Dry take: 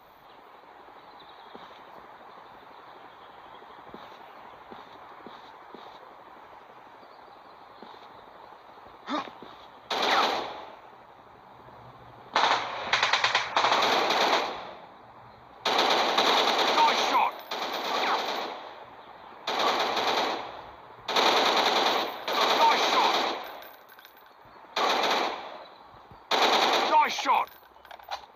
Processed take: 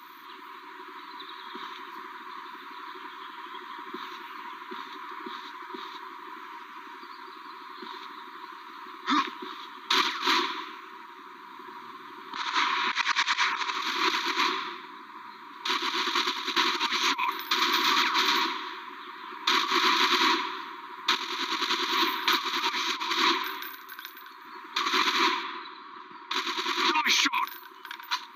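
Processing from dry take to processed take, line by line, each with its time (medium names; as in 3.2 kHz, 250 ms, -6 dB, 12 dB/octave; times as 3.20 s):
15.99–16.74 s: reverse
25.43–26.33 s: low-pass 4.2 kHz
whole clip: FFT band-reject 390–930 Hz; high-pass 270 Hz 24 dB/octave; compressor with a negative ratio -31 dBFS, ratio -0.5; trim +5.5 dB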